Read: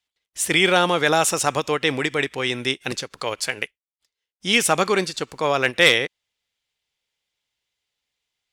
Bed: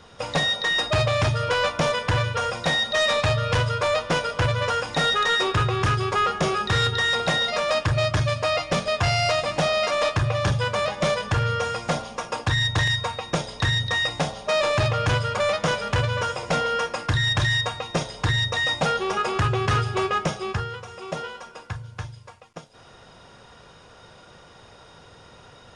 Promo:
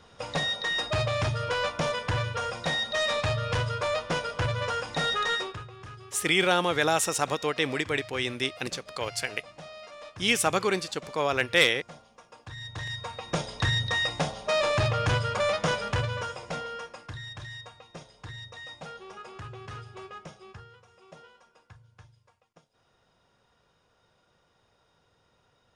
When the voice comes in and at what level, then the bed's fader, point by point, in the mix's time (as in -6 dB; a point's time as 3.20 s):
5.75 s, -6.0 dB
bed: 5.34 s -6 dB
5.67 s -22.5 dB
12.38 s -22.5 dB
13.40 s -3.5 dB
15.80 s -3.5 dB
17.34 s -19.5 dB